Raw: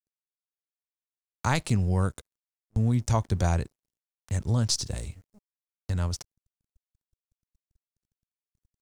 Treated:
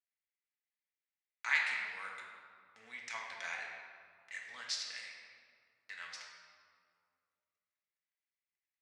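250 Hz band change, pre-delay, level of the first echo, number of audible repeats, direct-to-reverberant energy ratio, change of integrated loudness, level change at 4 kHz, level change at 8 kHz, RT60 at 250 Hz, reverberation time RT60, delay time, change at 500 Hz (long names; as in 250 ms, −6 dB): −39.0 dB, 4 ms, no echo audible, no echo audible, −2.5 dB, −11.0 dB, −7.0 dB, −14.0 dB, 2.9 s, 2.3 s, no echo audible, −23.0 dB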